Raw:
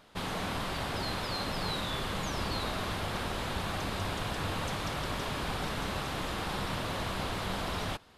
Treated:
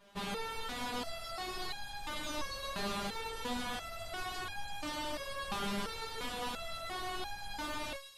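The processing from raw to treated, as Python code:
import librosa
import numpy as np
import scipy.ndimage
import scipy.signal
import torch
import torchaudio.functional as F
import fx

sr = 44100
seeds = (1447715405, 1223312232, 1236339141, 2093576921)

y = fx.echo_wet_highpass(x, sr, ms=126, feedback_pct=70, hz=3200.0, wet_db=-5.5)
y = fx.resonator_held(y, sr, hz=2.9, low_hz=200.0, high_hz=820.0)
y = y * 10.0 ** (10.0 / 20.0)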